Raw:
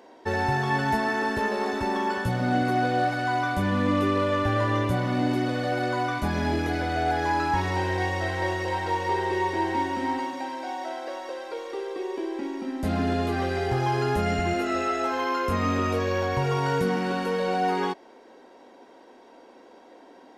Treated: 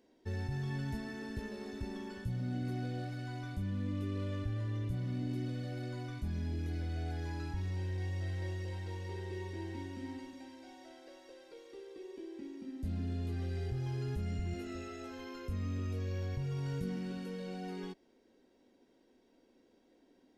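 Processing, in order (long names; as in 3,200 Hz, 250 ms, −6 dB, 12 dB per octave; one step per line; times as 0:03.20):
guitar amp tone stack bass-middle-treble 10-0-1
in parallel at −0.5 dB: compressor whose output falls as the input rises −43 dBFS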